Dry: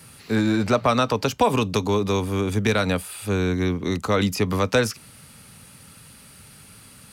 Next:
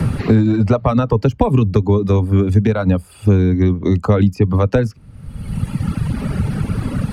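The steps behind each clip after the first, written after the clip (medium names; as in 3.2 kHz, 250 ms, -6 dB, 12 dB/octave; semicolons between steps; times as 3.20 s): tilt EQ -4.5 dB/octave; reverb removal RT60 1.7 s; three bands compressed up and down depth 100%; trim +1 dB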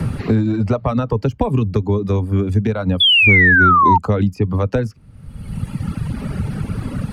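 painted sound fall, 3.00–3.98 s, 880–3500 Hz -8 dBFS; trim -3.5 dB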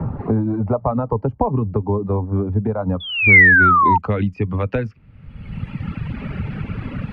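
low-pass sweep 900 Hz -> 2.5 kHz, 2.85–3.45 s; trim -3.5 dB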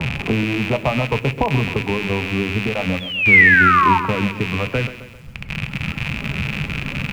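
rattle on loud lows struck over -30 dBFS, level -12 dBFS; reverberation RT60 0.60 s, pre-delay 5 ms, DRR 12.5 dB; bit-crushed delay 132 ms, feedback 55%, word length 7-bit, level -12 dB; trim -1 dB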